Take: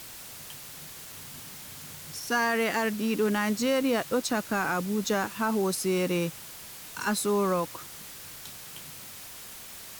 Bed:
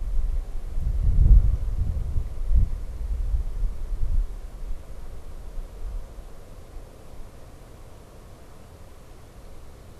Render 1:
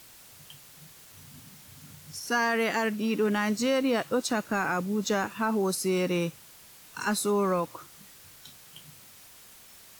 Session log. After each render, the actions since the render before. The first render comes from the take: noise print and reduce 8 dB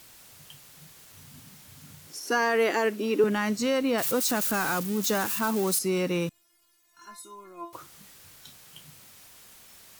2.07–3.24 s: resonant high-pass 340 Hz, resonance Q 2.6; 3.98–5.79 s: zero-crossing glitches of -23 dBFS; 6.29–7.73 s: inharmonic resonator 340 Hz, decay 0.3 s, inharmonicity 0.002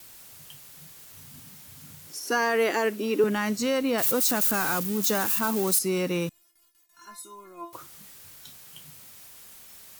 gate with hold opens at -55 dBFS; treble shelf 9.6 kHz +6.5 dB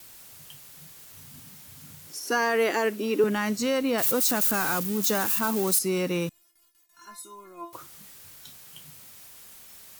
no audible change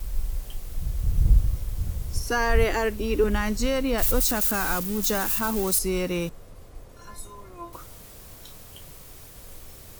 add bed -3 dB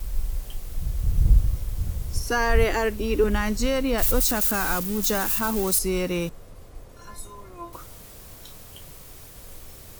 trim +1 dB

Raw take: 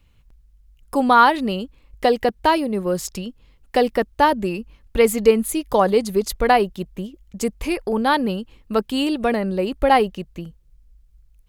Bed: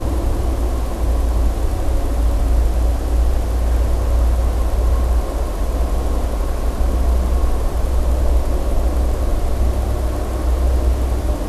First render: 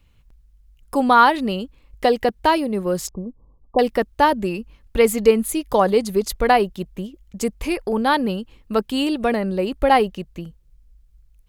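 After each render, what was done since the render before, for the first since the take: 3.09–3.79 s: brick-wall FIR low-pass 1.2 kHz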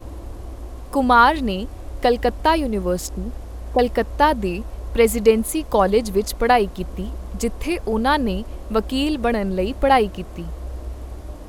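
add bed -15 dB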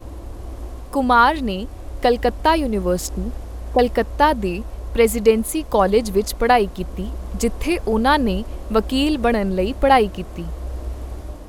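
level rider gain up to 3 dB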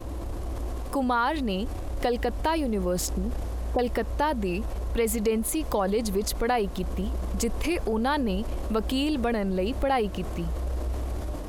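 transient shaper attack -3 dB, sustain +5 dB; compression 3:1, threshold -25 dBFS, peak gain reduction 12 dB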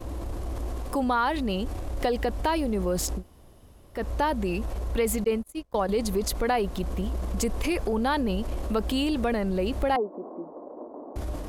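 3.19–3.98 s: room tone, crossfade 0.10 s; 5.24–5.89 s: gate -26 dBFS, range -36 dB; 9.96–11.16 s: elliptic band-pass 250–1000 Hz, stop band 50 dB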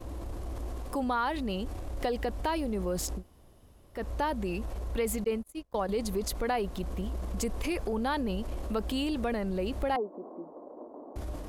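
trim -5 dB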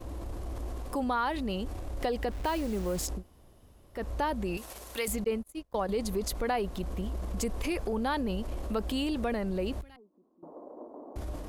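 2.31–3.06 s: send-on-delta sampling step -41.5 dBFS; 4.57–5.08 s: tilt EQ +4 dB/octave; 9.81–10.43 s: amplifier tone stack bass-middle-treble 6-0-2

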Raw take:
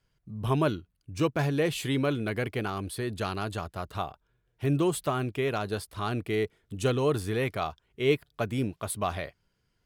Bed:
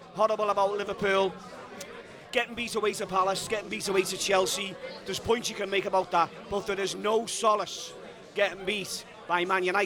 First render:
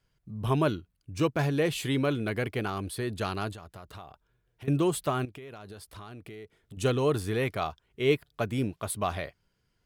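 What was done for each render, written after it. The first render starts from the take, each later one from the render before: 3.52–4.68 s: compression 5:1, threshold -42 dBFS; 5.25–6.77 s: compression 10:1, threshold -41 dBFS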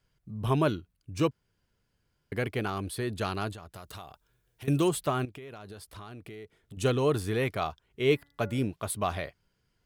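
1.31–2.32 s: room tone; 3.74–4.89 s: treble shelf 4 kHz +11 dB; 8.03–8.66 s: de-hum 284.5 Hz, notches 7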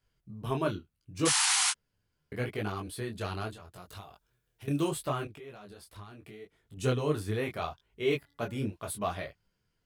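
1.25–1.71 s: painted sound noise 730–11000 Hz -23 dBFS; detune thickener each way 26 cents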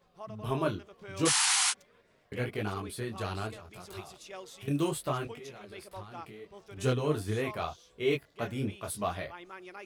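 add bed -20.5 dB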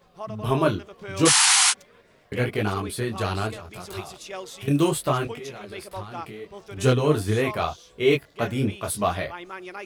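trim +9 dB

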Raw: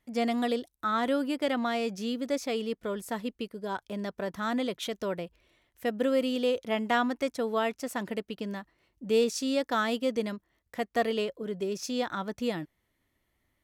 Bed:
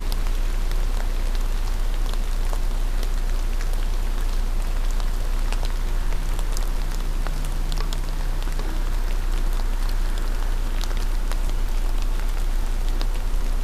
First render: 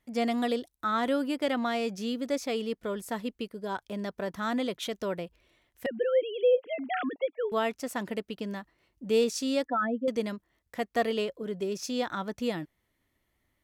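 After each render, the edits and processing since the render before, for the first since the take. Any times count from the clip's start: 5.86–7.52 s: formants replaced by sine waves; 9.65–10.08 s: spectral contrast enhancement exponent 2.6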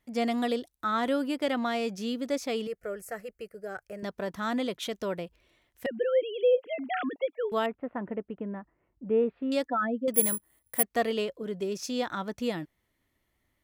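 2.67–4.03 s: static phaser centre 970 Hz, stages 6; 7.66–9.52 s: Gaussian low-pass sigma 5 samples; 10.14–10.83 s: careless resampling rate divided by 4×, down filtered, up zero stuff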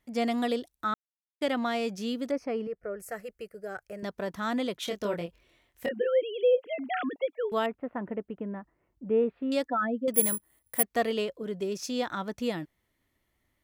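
0.94–1.41 s: mute; 2.31–3.00 s: boxcar filter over 12 samples; 4.85–6.07 s: doubling 24 ms -4.5 dB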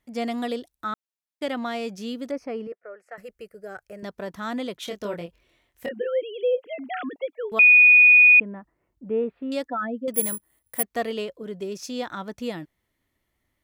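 2.72–3.18 s: band-pass 630–2400 Hz; 7.59–8.40 s: bleep 2.47 kHz -9.5 dBFS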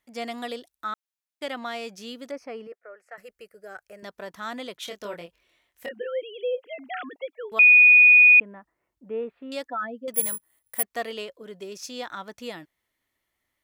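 bass shelf 410 Hz -12 dB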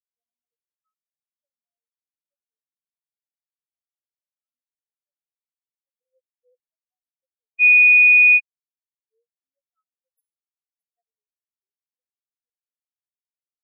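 spectral contrast expander 4:1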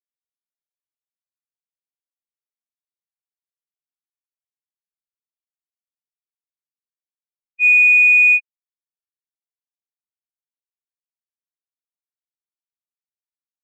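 waveshaping leveller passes 2; spectral contrast expander 2.5:1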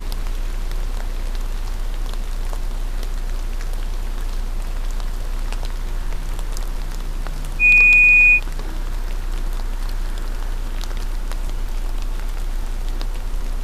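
add bed -1 dB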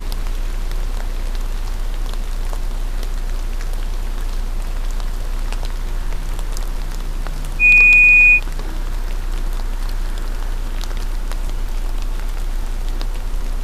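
trim +2 dB

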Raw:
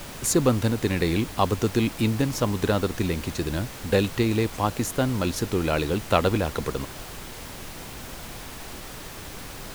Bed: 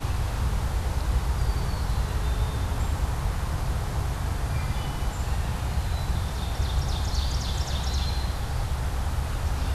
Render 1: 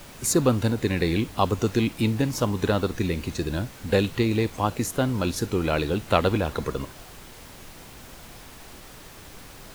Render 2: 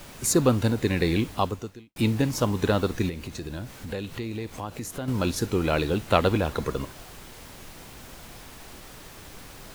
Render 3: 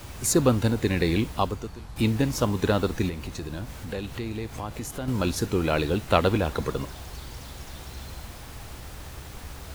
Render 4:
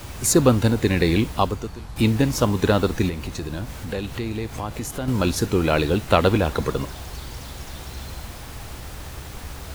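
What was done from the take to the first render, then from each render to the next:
noise print and reduce 6 dB
1.33–1.96 s: fade out quadratic; 3.09–5.08 s: compression 2.5:1, threshold -34 dBFS
add bed -14.5 dB
trim +4.5 dB; peak limiter -1 dBFS, peak gain reduction 2.5 dB

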